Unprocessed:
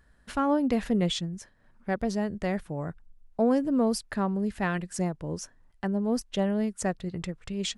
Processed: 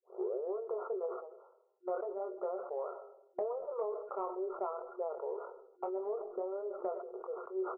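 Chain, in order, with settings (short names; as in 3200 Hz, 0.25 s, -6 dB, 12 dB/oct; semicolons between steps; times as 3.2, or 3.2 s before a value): tape start at the beginning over 0.73 s; gate -51 dBFS, range -49 dB; FFT band-pass 380–1500 Hz; compressor 8:1, threshold -37 dBFS, peak gain reduction 15 dB; pitch shift -1 st; flange 1.8 Hz, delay 5.2 ms, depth 4.6 ms, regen -54%; doubler 24 ms -10 dB; on a send at -21 dB: reverb RT60 0.90 s, pre-delay 75 ms; on the sum: sustainer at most 65 dB/s; gain +6 dB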